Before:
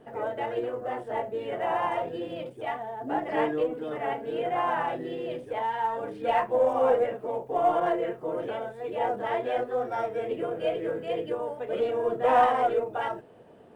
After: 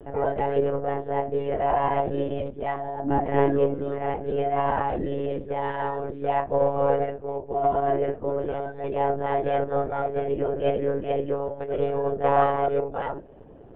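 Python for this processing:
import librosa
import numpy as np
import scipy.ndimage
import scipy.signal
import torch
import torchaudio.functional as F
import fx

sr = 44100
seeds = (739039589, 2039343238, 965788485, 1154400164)

y = fx.high_shelf(x, sr, hz=2100.0, db=-8.5)
y = fx.rider(y, sr, range_db=10, speed_s=2.0)
y = fx.low_shelf(y, sr, hz=380.0, db=9.0)
y = fx.lpc_monotone(y, sr, seeds[0], pitch_hz=140.0, order=16)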